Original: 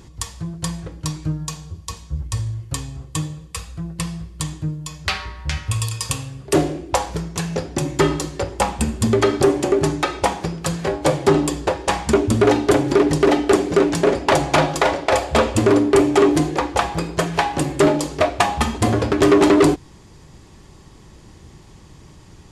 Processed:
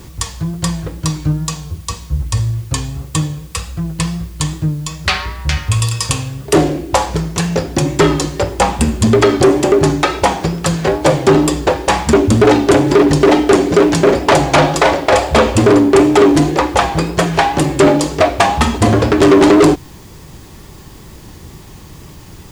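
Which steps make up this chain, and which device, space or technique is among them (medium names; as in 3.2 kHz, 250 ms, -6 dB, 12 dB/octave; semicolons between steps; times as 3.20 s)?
compact cassette (saturation -11.5 dBFS, distortion -14 dB; low-pass 10 kHz; wow and flutter; white noise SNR 34 dB); trim +8.5 dB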